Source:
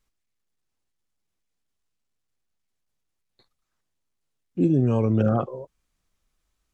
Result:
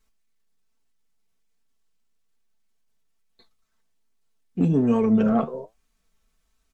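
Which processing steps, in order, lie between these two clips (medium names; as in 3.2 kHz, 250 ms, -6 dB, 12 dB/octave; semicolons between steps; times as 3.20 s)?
comb 4.5 ms, depth 79%; in parallel at -4 dB: saturation -20 dBFS, distortion -12 dB; on the sum: flange 1.2 Hz, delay 6.9 ms, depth 7 ms, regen +70%; trim +1.5 dB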